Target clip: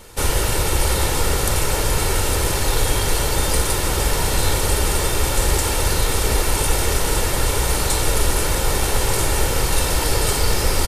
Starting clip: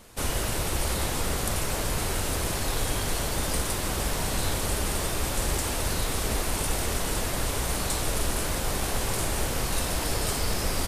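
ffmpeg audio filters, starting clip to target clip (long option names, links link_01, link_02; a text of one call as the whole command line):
ffmpeg -i in.wav -af "aecho=1:1:2.2:0.41,volume=7.5dB" out.wav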